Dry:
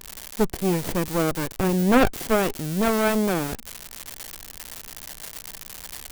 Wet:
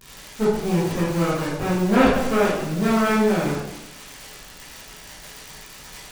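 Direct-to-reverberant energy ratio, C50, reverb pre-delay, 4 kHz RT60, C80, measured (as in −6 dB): −11.5 dB, 0.0 dB, 9 ms, 0.80 s, 4.0 dB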